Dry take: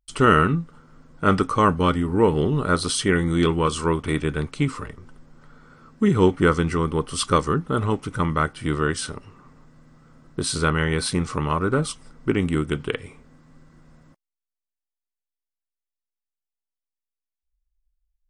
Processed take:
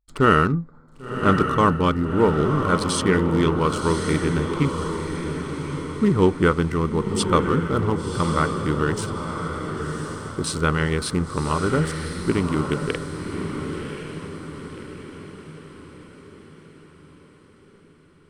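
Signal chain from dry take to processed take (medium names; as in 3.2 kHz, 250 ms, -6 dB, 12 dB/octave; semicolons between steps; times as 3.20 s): local Wiener filter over 15 samples; echo that smears into a reverb 1079 ms, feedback 49%, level -6 dB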